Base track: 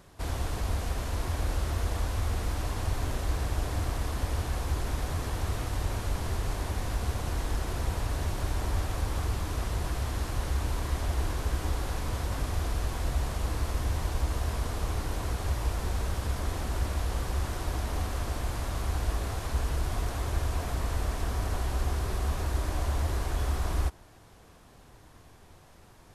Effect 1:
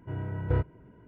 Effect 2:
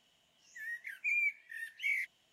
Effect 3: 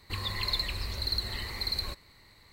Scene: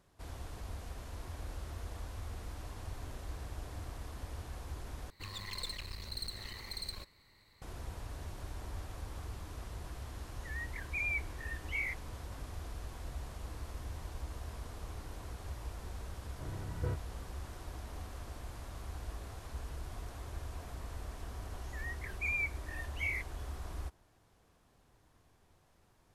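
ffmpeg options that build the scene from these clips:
ffmpeg -i bed.wav -i cue0.wav -i cue1.wav -i cue2.wav -filter_complex "[2:a]asplit=2[link_01][link_02];[0:a]volume=-13.5dB[link_03];[3:a]aeval=exprs='clip(val(0),-1,0.01)':channel_layout=same[link_04];[link_01]equalizer=frequency=1800:width=1.5:gain=4.5[link_05];[link_03]asplit=2[link_06][link_07];[link_06]atrim=end=5.104[link_08];[link_04]atrim=end=2.52,asetpts=PTS-STARTPTS,volume=-7.5dB[link_09];[link_07]atrim=start=7.616[link_10];[link_05]atrim=end=2.32,asetpts=PTS-STARTPTS,volume=-6dB,afade=type=in:duration=0.004:curve=hsin,afade=type=out:start_time=2.316:duration=0.004:curve=hsin,adelay=9890[link_11];[1:a]atrim=end=1.07,asetpts=PTS-STARTPTS,volume=-10dB,afade=type=in:duration=0.004:curve=hsin,afade=type=out:start_time=1.066:duration=0.004:curve=hsin,adelay=16330[link_12];[link_02]atrim=end=2.32,asetpts=PTS-STARTPTS,volume=-2.5dB,afade=type=in:duration=0.004:curve=hsin,afade=type=out:start_time=2.316:duration=0.004:curve=hsin,adelay=21170[link_13];[link_08][link_09]acrossfade=duration=0.004:curve1=hsin:curve2=hsin[link_14];[link_14][link_10]acrossfade=duration=0.004:curve1=hsin:curve2=hsin[link_15];[link_15][link_11][link_12][link_13]amix=inputs=4:normalize=0" out.wav

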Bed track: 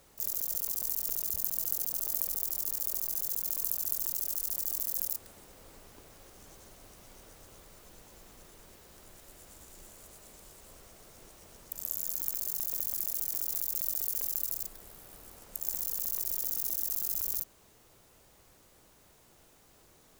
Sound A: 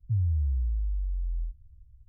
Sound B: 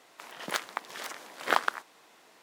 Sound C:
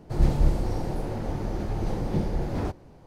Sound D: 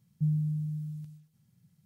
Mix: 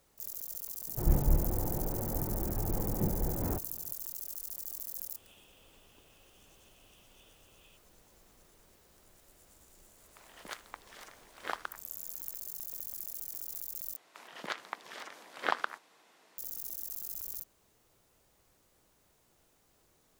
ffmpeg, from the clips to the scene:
ffmpeg -i bed.wav -i cue0.wav -i cue1.wav -i cue2.wav -filter_complex "[3:a]asplit=2[link_01][link_02];[2:a]asplit=2[link_03][link_04];[0:a]volume=-8dB[link_05];[link_01]lowpass=1800[link_06];[link_02]asuperpass=centerf=3000:order=12:qfactor=2.8[link_07];[link_04]acrossover=split=5500[link_08][link_09];[link_09]acompressor=threshold=-51dB:ratio=4:attack=1:release=60[link_10];[link_08][link_10]amix=inputs=2:normalize=0[link_11];[link_05]asplit=2[link_12][link_13];[link_12]atrim=end=13.964[link_14];[link_11]atrim=end=2.42,asetpts=PTS-STARTPTS,volume=-5.5dB[link_15];[link_13]atrim=start=16.376[link_16];[link_06]atrim=end=3.06,asetpts=PTS-STARTPTS,volume=-5.5dB,afade=type=in:duration=0.004:curve=hsin,afade=type=out:start_time=3.056:duration=0.004:curve=hsin,adelay=870[link_17];[link_07]atrim=end=3.06,asetpts=PTS-STARTPTS,volume=-7.5dB,afade=type=in:duration=0.004:curve=hsin,afade=type=out:start_time=3.056:duration=0.004:curve=hsin,adelay=5060[link_18];[link_03]atrim=end=2.42,asetpts=PTS-STARTPTS,volume=-12dB,afade=type=in:duration=0.004:curve=hsin,afade=type=out:start_time=2.416:duration=0.004:curve=hsin,adelay=9970[link_19];[link_14][link_15]acrossfade=duration=0.004:curve1=hsin:curve2=hsin[link_20];[link_20][link_16]acrossfade=duration=0.004:curve1=hsin:curve2=hsin[link_21];[link_21][link_17][link_18][link_19]amix=inputs=4:normalize=0" out.wav

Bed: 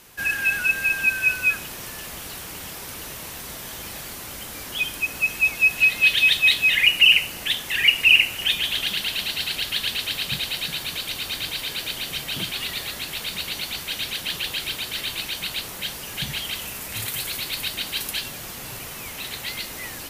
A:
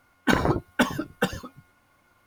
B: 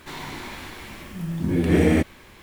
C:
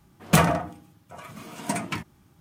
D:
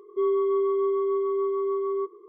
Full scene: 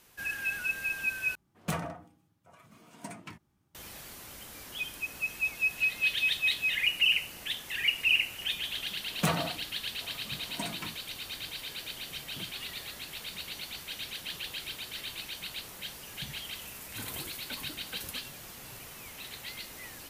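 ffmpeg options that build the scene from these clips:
ffmpeg -i bed.wav -i cue0.wav -i cue1.wav -i cue2.wav -filter_complex "[3:a]asplit=2[link_01][link_02];[0:a]volume=-11dB[link_03];[link_02]highpass=100[link_04];[1:a]acompressor=threshold=-32dB:ratio=6:attack=3.2:release=140:knee=1:detection=peak[link_05];[link_03]asplit=2[link_06][link_07];[link_06]atrim=end=1.354[link_08];[link_01]atrim=end=2.4,asetpts=PTS-STARTPTS,volume=-15dB[link_09];[link_07]atrim=start=3.746[link_10];[link_04]atrim=end=2.4,asetpts=PTS-STARTPTS,volume=-10dB,afade=type=in:duration=0.004:curve=hsin,afade=type=out:start_time=2.396:duration=0.004:curve=hsin,adelay=392490S[link_11];[link_05]atrim=end=2.26,asetpts=PTS-STARTPTS,volume=-10.5dB,afade=type=in:duration=0.004:curve=hsin,afade=type=out:start_time=2.256:duration=0.004:curve=hsin,adelay=16710[link_12];[link_08][link_09]acrossfade=duration=0.004:curve1=hsin:curve2=hsin[link_13];[link_13][link_10]acrossfade=duration=0.004:curve1=hsin:curve2=hsin[link_14];[link_14][link_11][link_12]amix=inputs=3:normalize=0" out.wav

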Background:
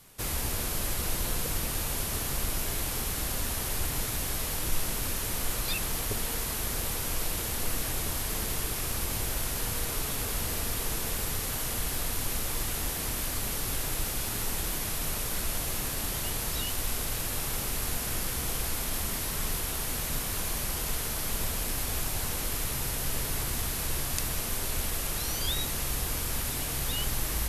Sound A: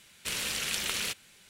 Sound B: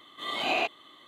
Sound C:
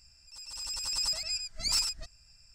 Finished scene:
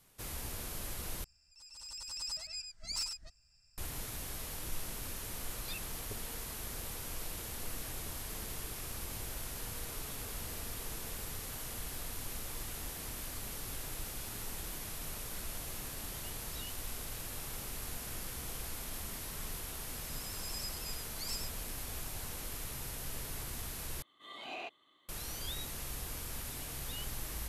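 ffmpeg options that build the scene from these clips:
ffmpeg -i bed.wav -i cue0.wav -i cue1.wav -i cue2.wav -filter_complex "[3:a]asplit=2[link_01][link_02];[0:a]volume=-10.5dB[link_03];[2:a]asoftclip=type=tanh:threshold=-16.5dB[link_04];[link_03]asplit=3[link_05][link_06][link_07];[link_05]atrim=end=1.244[link_08];[link_01]atrim=end=2.54,asetpts=PTS-STARTPTS,volume=-9dB[link_09];[link_06]atrim=start=3.776:end=24.024[link_10];[link_04]atrim=end=1.07,asetpts=PTS-STARTPTS,volume=-15.5dB[link_11];[link_07]atrim=start=25.086[link_12];[link_02]atrim=end=2.54,asetpts=PTS-STARTPTS,volume=-13.5dB,afade=type=in:duration=0.004:curve=hsin,afade=type=out:start_time=2.536:duration=0.004:curve=hsin,adelay=862596S[link_13];[link_08][link_09]acrossfade=duration=0.004:curve1=hsin:curve2=hsin[link_14];[link_14][link_10]acrossfade=duration=0.004:curve1=hsin:curve2=hsin[link_15];[link_15][link_11]acrossfade=duration=0.004:curve1=hsin:curve2=hsin[link_16];[link_16][link_12]acrossfade=duration=0.004:curve1=hsin:curve2=hsin[link_17];[link_17][link_13]amix=inputs=2:normalize=0" out.wav

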